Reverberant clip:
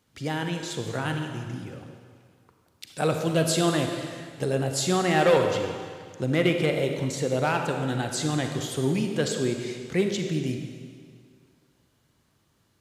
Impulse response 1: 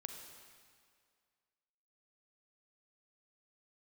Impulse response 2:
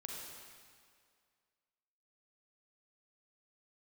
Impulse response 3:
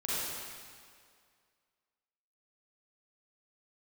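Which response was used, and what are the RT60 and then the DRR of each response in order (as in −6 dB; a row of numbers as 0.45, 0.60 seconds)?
1; 2.1, 2.1, 2.1 seconds; 4.0, −2.0, −9.5 decibels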